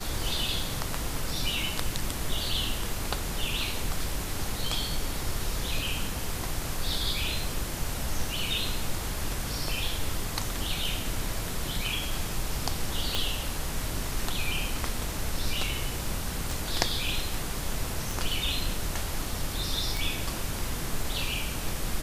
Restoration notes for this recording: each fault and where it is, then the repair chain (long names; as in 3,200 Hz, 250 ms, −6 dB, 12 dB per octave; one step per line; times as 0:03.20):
0:13.15: click −12 dBFS
0:16.51: click
0:18.11: click
0:19.97: click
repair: click removal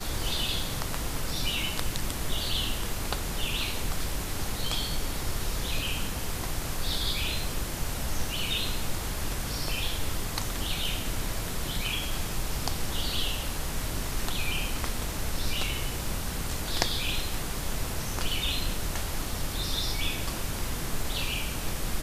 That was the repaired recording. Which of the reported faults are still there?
0:13.15: click
0:16.51: click